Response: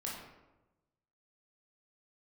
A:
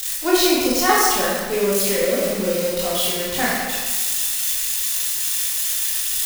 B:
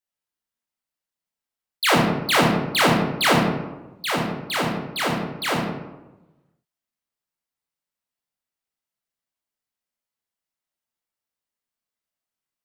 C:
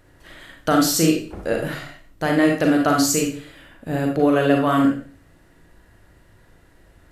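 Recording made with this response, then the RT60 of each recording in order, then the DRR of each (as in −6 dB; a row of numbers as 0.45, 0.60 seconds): B; 1.4, 1.0, 0.40 seconds; −6.5, −4.5, 0.5 decibels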